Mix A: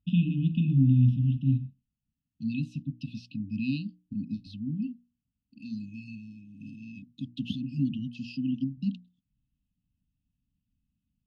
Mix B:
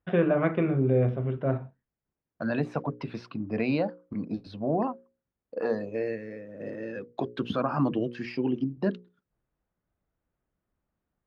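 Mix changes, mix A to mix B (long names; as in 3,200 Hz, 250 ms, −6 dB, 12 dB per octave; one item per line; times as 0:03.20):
first voice −5.5 dB
master: remove linear-phase brick-wall band-stop 290–2,500 Hz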